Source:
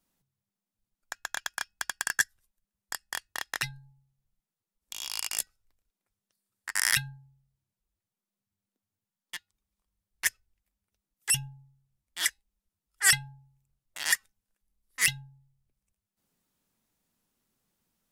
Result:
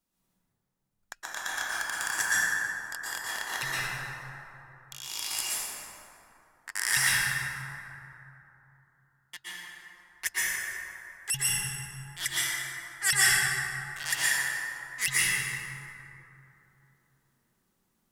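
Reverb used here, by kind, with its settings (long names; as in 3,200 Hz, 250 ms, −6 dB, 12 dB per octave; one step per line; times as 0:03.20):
dense smooth reverb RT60 3.2 s, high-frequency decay 0.4×, pre-delay 105 ms, DRR −9 dB
level −5 dB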